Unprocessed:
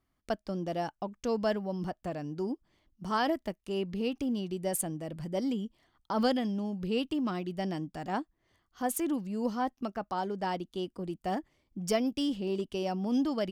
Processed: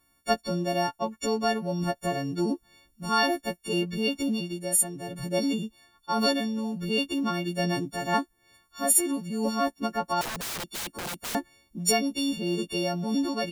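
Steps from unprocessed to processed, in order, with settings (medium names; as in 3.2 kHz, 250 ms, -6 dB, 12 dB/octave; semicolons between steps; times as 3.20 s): partials quantised in pitch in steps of 4 st; gain riding within 5 dB 0.5 s; 10.21–11.35 s: integer overflow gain 31 dB; trim +2 dB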